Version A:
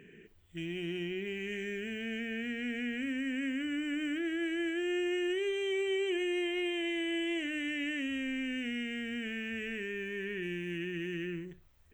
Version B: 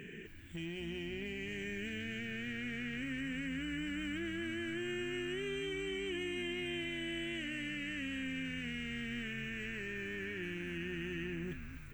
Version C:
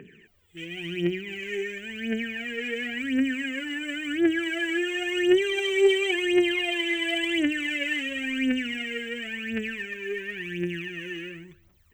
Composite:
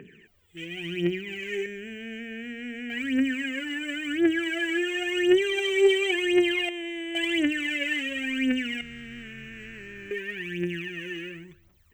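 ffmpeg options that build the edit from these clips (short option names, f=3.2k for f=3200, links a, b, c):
-filter_complex "[0:a]asplit=2[a][b];[2:a]asplit=4[c][d][e][f];[c]atrim=end=1.662[g];[a]atrim=start=1.658:end=2.902[h];[d]atrim=start=2.898:end=6.692[i];[b]atrim=start=6.688:end=7.152[j];[e]atrim=start=7.148:end=8.812[k];[1:a]atrim=start=8.808:end=10.112[l];[f]atrim=start=10.108[m];[g][h]acrossfade=d=0.004:c1=hsin:c2=hsin[n];[n][i]acrossfade=d=0.004:c1=hsin:c2=hsin[o];[o][j]acrossfade=d=0.004:c1=hsin:c2=hsin[p];[p][k]acrossfade=d=0.004:c1=hsin:c2=hsin[q];[q][l]acrossfade=d=0.004:c1=hsin:c2=hsin[r];[r][m]acrossfade=d=0.004:c1=hsin:c2=hsin"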